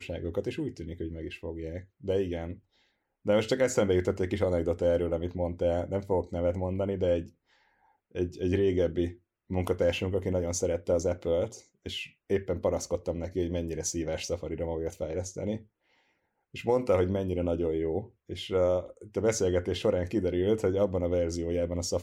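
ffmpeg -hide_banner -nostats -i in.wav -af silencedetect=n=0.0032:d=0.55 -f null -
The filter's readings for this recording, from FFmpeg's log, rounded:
silence_start: 2.58
silence_end: 3.25 | silence_duration: 0.67
silence_start: 7.30
silence_end: 8.11 | silence_duration: 0.82
silence_start: 15.64
silence_end: 16.54 | silence_duration: 0.90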